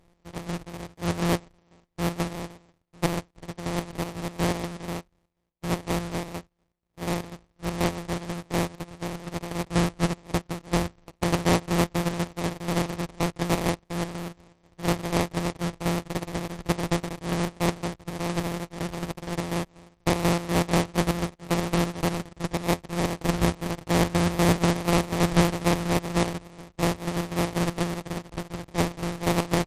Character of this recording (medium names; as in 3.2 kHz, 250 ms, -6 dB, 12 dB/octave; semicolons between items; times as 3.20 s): a buzz of ramps at a fixed pitch in blocks of 256 samples; chopped level 4.1 Hz, depth 60%, duty 55%; aliases and images of a low sample rate 1.5 kHz, jitter 20%; MP3